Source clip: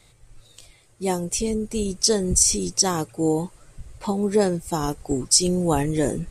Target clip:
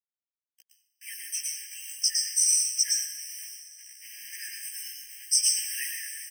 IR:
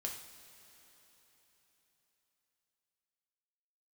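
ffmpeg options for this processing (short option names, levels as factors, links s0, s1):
-filter_complex "[0:a]asettb=1/sr,asplit=3[s0][s1][s2];[s0]atrim=end=4.104[s3];[s1]atrim=start=4.1:end=4.69,asetpts=PTS-STARTPTS,afade=t=in:d=0.004:c=qsin,afade=t=out:st=0.586:d=0.004:c=qsin,aeval=exprs='val(0)+0.5*0.0266*sgn(val(0))':c=same[s4];[s2]atrim=start=4.686[s5];[s3][s4]acrossfade=d=0.004:c1=hsin:c2=qsin[s6];[s6][s5]acrossfade=d=0.004:c1=qsin:c2=hsin,acrusher=bits=5:mix=0:aa=0.000001,asplit=2[s7][s8];[s8]adelay=15,volume=0.794[s9];[s7][s9]amix=inputs=2:normalize=0,agate=range=0.0224:threshold=0.00708:ratio=3:detection=peak,highshelf=f=6100:g=4.5,asettb=1/sr,asplit=3[s10][s11][s12];[s10]atrim=end=5.454[s13];[s11]atrim=start=5.45:end=5.91,asetpts=PTS-STARTPTS,afade=t=in:d=0.004:c=qsin,afade=t=out:st=0.456:d=0.004:c=qsin,acontrast=79[s14];[s12]atrim=start=5.906[s15];[s13][s14]acrossfade=d=0.004:c1=hsin:c2=qsin[s16];[s16][s15]acrossfade=d=0.004:c1=qsin:c2=hsin,asplit=2[s17][s18];[s18]equalizer=f=2200:t=o:w=1.2:g=-5[s19];[1:a]atrim=start_sample=2205,adelay=111[s20];[s19][s20]afir=irnorm=-1:irlink=0,volume=1.12[s21];[s17][s21]amix=inputs=2:normalize=0,afftfilt=real='re*eq(mod(floor(b*sr/1024/1600),2),1)':imag='im*eq(mod(floor(b*sr/1024/1600),2),1)':win_size=1024:overlap=0.75,volume=0.398"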